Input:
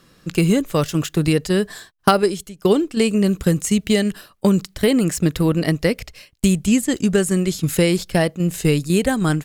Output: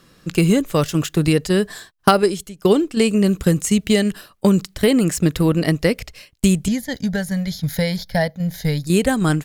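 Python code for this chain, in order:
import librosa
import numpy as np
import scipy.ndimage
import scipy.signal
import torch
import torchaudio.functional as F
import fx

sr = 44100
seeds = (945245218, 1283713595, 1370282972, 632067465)

y = fx.fixed_phaser(x, sr, hz=1800.0, stages=8, at=(6.68, 8.87))
y = F.gain(torch.from_numpy(y), 1.0).numpy()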